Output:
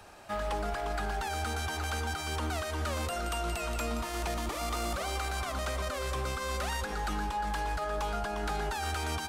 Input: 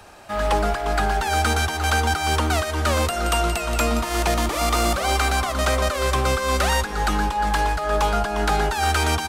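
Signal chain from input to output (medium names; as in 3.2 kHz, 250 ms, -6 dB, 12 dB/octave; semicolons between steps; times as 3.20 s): de-hum 260.7 Hz, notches 38; peak limiter -19 dBFS, peak gain reduction 8.5 dB; trim -6.5 dB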